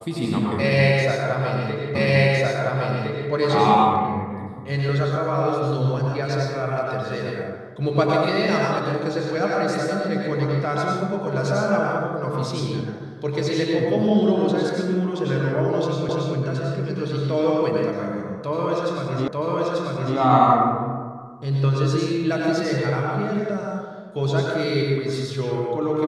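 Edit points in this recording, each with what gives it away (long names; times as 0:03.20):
0:01.95: the same again, the last 1.36 s
0:16.09: the same again, the last 0.28 s
0:19.28: the same again, the last 0.89 s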